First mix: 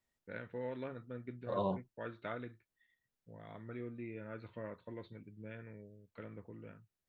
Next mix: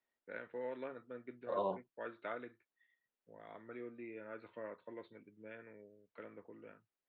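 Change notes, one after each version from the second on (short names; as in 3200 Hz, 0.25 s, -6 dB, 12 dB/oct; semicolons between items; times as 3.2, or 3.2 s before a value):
master: add three-band isolator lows -19 dB, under 260 Hz, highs -15 dB, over 3600 Hz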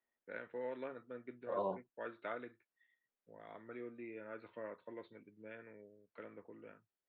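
second voice: add air absorption 390 m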